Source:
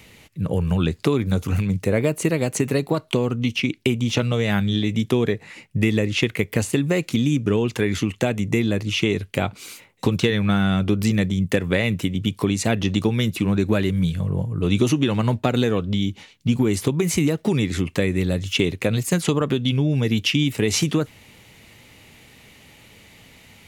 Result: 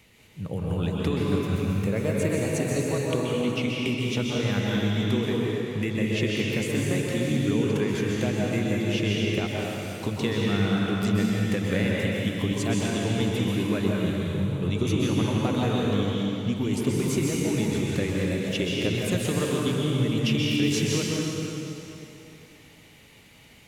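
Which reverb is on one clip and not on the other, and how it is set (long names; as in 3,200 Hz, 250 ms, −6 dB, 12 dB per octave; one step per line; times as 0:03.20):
dense smooth reverb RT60 3.1 s, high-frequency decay 0.9×, pre-delay 115 ms, DRR −4 dB
level −9.5 dB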